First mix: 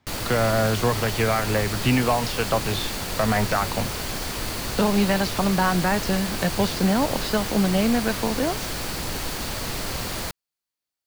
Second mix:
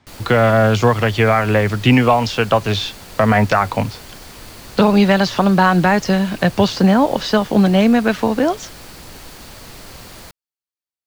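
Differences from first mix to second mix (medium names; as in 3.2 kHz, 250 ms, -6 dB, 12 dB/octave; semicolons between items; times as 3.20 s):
speech +8.5 dB; background -8.0 dB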